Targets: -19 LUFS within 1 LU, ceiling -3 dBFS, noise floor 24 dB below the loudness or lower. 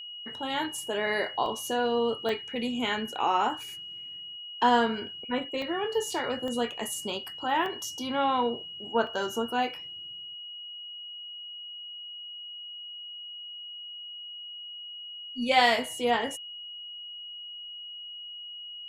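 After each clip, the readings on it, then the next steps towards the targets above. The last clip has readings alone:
dropouts 6; longest dropout 1.1 ms; steady tone 2900 Hz; tone level -39 dBFS; loudness -31.0 LUFS; peak -9.5 dBFS; loudness target -19.0 LUFS
-> interpolate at 1.46/2.29/5.62/6.48/7.66/9.07, 1.1 ms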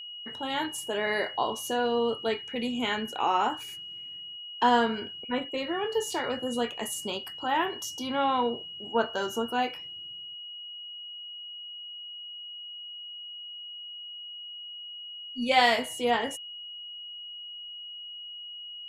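dropouts 0; steady tone 2900 Hz; tone level -39 dBFS
-> notch 2900 Hz, Q 30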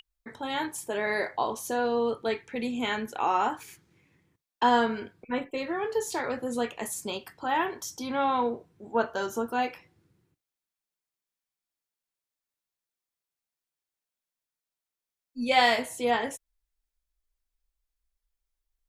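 steady tone none; loudness -29.0 LUFS; peak -10.5 dBFS; loudness target -19.0 LUFS
-> gain +10 dB; limiter -3 dBFS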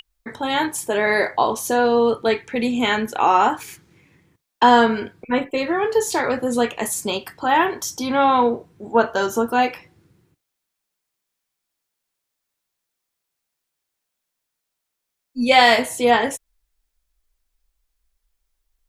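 loudness -19.0 LUFS; peak -3.0 dBFS; noise floor -80 dBFS

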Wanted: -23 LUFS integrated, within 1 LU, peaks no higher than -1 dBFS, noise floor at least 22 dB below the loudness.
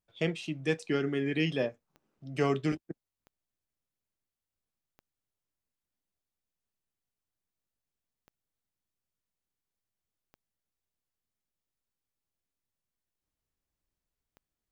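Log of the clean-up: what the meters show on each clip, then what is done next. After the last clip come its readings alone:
clicks 6; loudness -32.0 LUFS; peak -15.0 dBFS; loudness target -23.0 LUFS
-> de-click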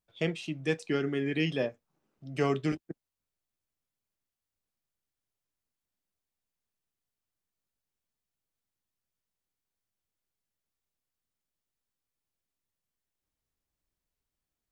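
clicks 0; loudness -32.0 LUFS; peak -15.0 dBFS; loudness target -23.0 LUFS
-> gain +9 dB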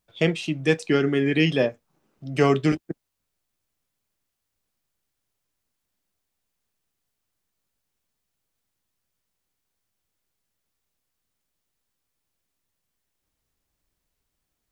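loudness -23.0 LUFS; peak -6.0 dBFS; noise floor -80 dBFS

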